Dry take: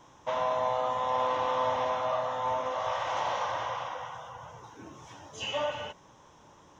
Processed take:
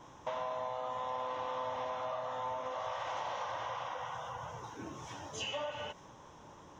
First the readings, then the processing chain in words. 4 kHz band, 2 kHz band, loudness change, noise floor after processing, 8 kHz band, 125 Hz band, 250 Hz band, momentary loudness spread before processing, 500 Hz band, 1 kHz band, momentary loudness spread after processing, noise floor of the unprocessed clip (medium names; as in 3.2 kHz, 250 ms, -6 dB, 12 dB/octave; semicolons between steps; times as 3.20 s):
-5.5 dB, -6.5 dB, -8.5 dB, -55 dBFS, no reading, -4.0 dB, -4.5 dB, 18 LU, -8.0 dB, -8.0 dB, 8 LU, -57 dBFS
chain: compression 4:1, threshold -40 dBFS, peak gain reduction 13 dB; tape noise reduction on one side only decoder only; trim +2.5 dB